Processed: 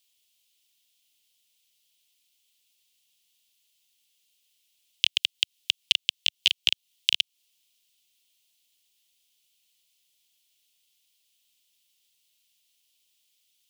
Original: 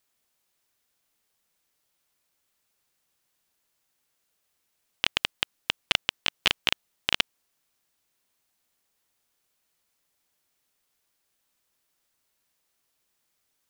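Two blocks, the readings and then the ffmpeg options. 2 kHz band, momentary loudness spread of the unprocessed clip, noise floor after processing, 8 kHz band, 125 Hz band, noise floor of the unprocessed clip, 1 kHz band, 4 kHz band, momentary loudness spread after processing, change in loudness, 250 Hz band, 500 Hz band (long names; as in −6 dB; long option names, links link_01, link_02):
−2.5 dB, 5 LU, −76 dBFS, +2.0 dB, below −15 dB, −76 dBFS, below −20 dB, +3.5 dB, 5 LU, +2.5 dB, below −15 dB, below −15 dB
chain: -filter_complex "[0:a]acrossover=split=110|890[link_01][link_02][link_03];[link_01]acompressor=threshold=-53dB:ratio=4[link_04];[link_02]acompressor=threshold=-45dB:ratio=4[link_05];[link_03]acompressor=threshold=-28dB:ratio=4[link_06];[link_04][link_05][link_06]amix=inputs=3:normalize=0,highshelf=frequency=2100:width_type=q:width=3:gain=13,volume=-9dB"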